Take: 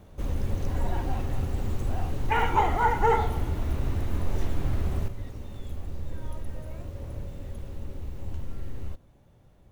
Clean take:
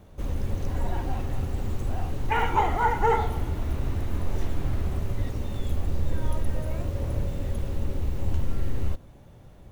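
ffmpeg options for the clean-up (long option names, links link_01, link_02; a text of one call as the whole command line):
ffmpeg -i in.wav -af "asetnsamples=nb_out_samples=441:pad=0,asendcmd='5.08 volume volume 8.5dB',volume=0dB" out.wav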